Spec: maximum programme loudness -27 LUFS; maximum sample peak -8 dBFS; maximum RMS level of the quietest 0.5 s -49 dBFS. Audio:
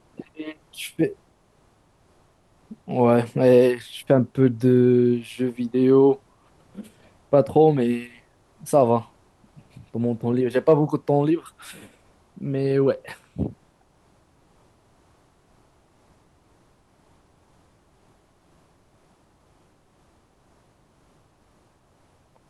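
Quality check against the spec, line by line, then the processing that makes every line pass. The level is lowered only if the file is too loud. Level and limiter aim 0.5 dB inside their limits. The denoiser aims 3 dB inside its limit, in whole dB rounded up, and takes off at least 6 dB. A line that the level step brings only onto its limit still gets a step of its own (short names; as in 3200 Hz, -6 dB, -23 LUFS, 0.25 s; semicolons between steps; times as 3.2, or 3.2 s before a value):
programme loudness -21.0 LUFS: fail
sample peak -5.0 dBFS: fail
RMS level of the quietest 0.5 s -60 dBFS: OK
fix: gain -6.5 dB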